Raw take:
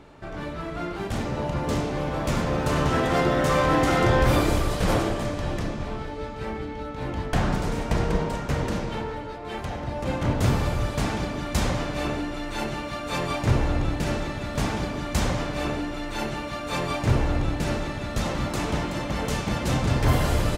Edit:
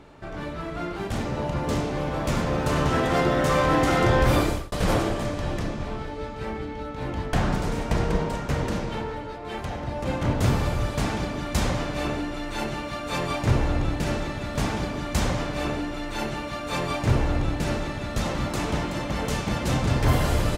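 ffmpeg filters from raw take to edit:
-filter_complex "[0:a]asplit=2[a][b];[a]atrim=end=4.72,asetpts=PTS-STARTPTS,afade=t=out:st=4.42:d=0.3[c];[b]atrim=start=4.72,asetpts=PTS-STARTPTS,afade=t=in:d=0.004:c=hsin[d];[c][d]concat=n=2:v=0:a=1"

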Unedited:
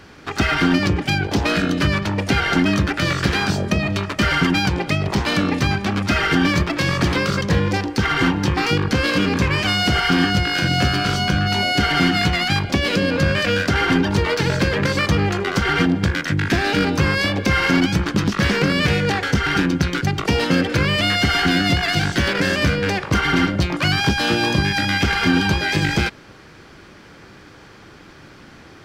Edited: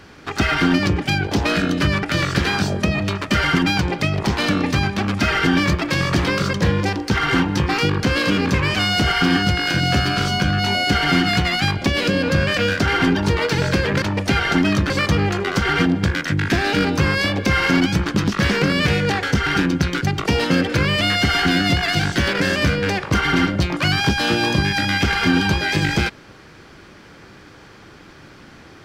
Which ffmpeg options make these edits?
-filter_complex "[0:a]asplit=4[a][b][c][d];[a]atrim=end=2.032[e];[b]atrim=start=2.908:end=14.902[f];[c]atrim=start=2.028:end=2.912[g];[d]atrim=start=14.898[h];[e][f]acrossfade=d=0.004:c1=hsin:c2=hsin[i];[i][g]acrossfade=d=0.004:c1=hsin:c2=hsin[j];[j][h]acrossfade=d=0.004:c1=hsin:c2=hsin"

